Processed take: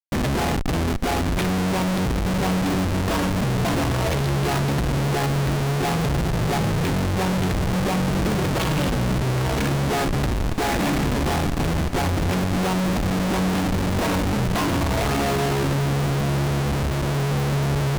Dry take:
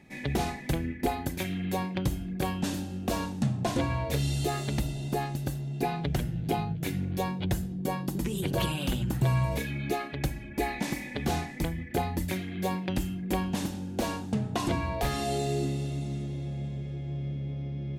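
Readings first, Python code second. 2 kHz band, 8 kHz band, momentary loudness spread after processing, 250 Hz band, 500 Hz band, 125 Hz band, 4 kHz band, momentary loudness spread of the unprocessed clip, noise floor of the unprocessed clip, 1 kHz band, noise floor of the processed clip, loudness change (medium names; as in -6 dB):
+10.5 dB, +9.0 dB, 1 LU, +8.5 dB, +9.0 dB, +9.0 dB, +9.5 dB, 5 LU, -40 dBFS, +9.0 dB, -23 dBFS, +9.0 dB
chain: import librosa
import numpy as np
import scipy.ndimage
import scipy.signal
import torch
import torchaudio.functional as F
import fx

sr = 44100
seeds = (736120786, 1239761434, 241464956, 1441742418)

p1 = scipy.signal.sosfilt(scipy.signal.butter(4, 5800.0, 'lowpass', fs=sr, output='sos'), x)
p2 = fx.schmitt(p1, sr, flips_db=-36.0)
p3 = p2 + fx.echo_diffused(p2, sr, ms=1022, feedback_pct=72, wet_db=-15.0, dry=0)
p4 = fx.doppler_dist(p3, sr, depth_ms=0.12)
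y = F.gain(torch.from_numpy(p4), 9.0).numpy()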